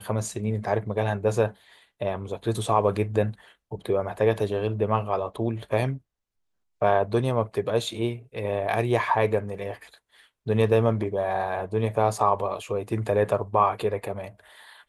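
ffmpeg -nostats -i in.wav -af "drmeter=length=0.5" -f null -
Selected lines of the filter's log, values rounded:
Channel 1: DR: 12.0
Overall DR: 12.0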